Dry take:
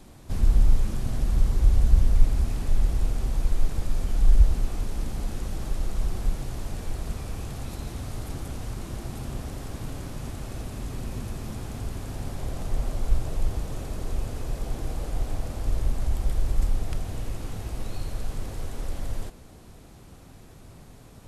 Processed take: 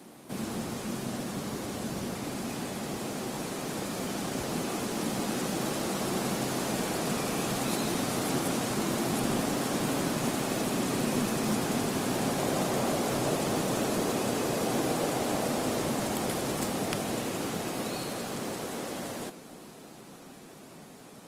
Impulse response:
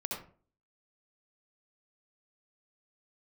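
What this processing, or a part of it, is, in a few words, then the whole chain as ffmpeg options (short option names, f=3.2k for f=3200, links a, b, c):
video call: -af "highpass=f=180:w=0.5412,highpass=f=180:w=1.3066,dynaudnorm=f=870:g=11:m=7.5dB,volume=4dB" -ar 48000 -c:a libopus -b:a 24k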